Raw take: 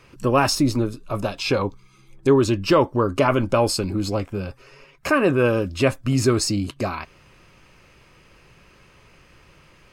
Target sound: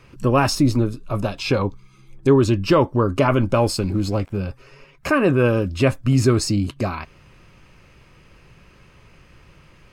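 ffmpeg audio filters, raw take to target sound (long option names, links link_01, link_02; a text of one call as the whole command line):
ffmpeg -i in.wav -filter_complex "[0:a]bass=frequency=250:gain=5,treble=frequency=4000:gain=-2,asettb=1/sr,asplit=3[link_01][link_02][link_03];[link_01]atrim=end=3.524[link_04];[link_02]atrim=start=3.52:end=4.37,asetpts=PTS-STARTPTS,afade=type=in:duration=0.004:curve=qsin,afade=type=out:start_time=0.846:duration=0.004:curve=qsin,aeval=exprs='sgn(val(0))*max(abs(val(0))-0.00376,0)':channel_layout=same[link_05];[link_03]atrim=start=4.366[link_06];[link_04][link_05]acrossfade=duration=0.004:curve1=hsin:curve2=qsin[link_07];[link_07][link_06]acrossfade=duration=0.004:curve1=qsin:curve2=hsin" out.wav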